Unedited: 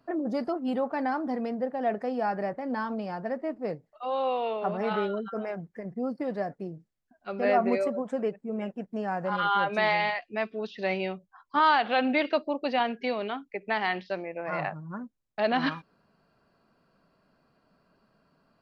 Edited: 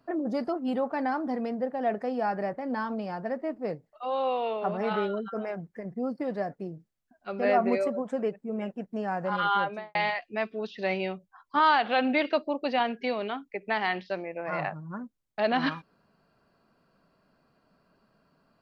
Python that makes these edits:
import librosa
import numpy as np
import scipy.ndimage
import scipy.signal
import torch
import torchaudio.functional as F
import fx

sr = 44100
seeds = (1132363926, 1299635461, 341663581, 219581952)

y = fx.studio_fade_out(x, sr, start_s=9.54, length_s=0.41)